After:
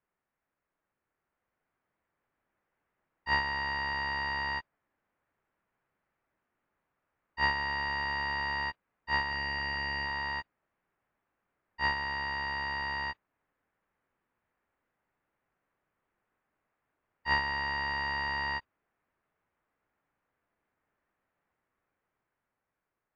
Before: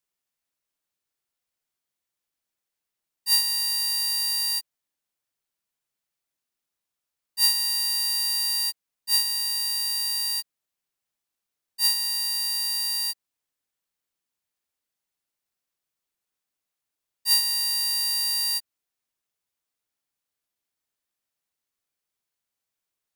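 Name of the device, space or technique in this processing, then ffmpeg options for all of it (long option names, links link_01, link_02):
action camera in a waterproof case: -filter_complex "[0:a]asettb=1/sr,asplit=3[link_01][link_02][link_03];[link_01]atrim=end=9.284[link_04];[link_02]atrim=start=9.28:end=10.06,asetpts=PTS-STARTPTS,afade=type=in:duration=0.004:curve=qsin,afade=type=out:start_time=0.776:duration=0.004:curve=qsin,asplit=2[link_05][link_06];[link_06]adelay=29,volume=-7.5dB[link_07];[link_05][link_07]amix=inputs=2:normalize=0,atrim=end_sample=34398[link_08];[link_03]atrim=start=10.056[link_09];[link_04][link_08]acrossfade=duration=0.004:curve1=hsin:curve2=qsin[link_10];[link_10][link_09]acrossfade=duration=0.004:curve1=qsin:curve2=hsin,lowpass=frequency=1900:width=0.5412,lowpass=frequency=1900:width=1.3066,dynaudnorm=framelen=630:gausssize=5:maxgain=5dB,volume=8dB" -ar 22050 -c:a aac -b:a 96k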